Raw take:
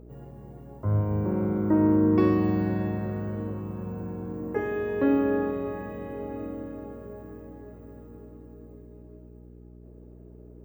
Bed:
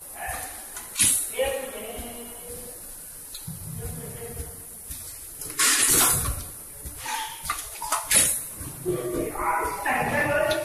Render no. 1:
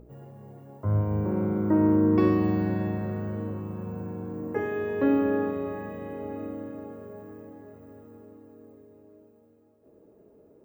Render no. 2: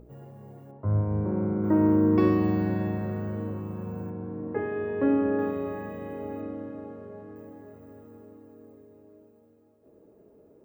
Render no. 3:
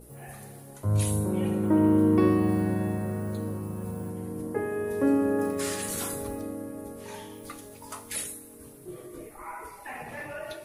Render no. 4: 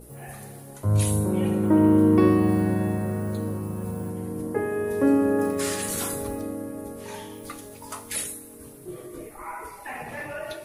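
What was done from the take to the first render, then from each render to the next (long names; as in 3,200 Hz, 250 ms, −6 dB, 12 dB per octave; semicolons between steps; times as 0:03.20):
hum removal 60 Hz, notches 7
0:00.71–0:01.64: high-frequency loss of the air 480 metres; 0:04.10–0:05.39: high-frequency loss of the air 340 metres; 0:06.41–0:07.36: high-frequency loss of the air 79 metres
mix in bed −15 dB
level +3.5 dB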